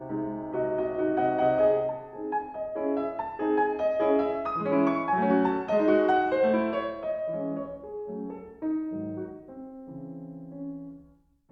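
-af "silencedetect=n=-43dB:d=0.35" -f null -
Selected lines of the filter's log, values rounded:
silence_start: 11.00
silence_end: 11.52 | silence_duration: 0.52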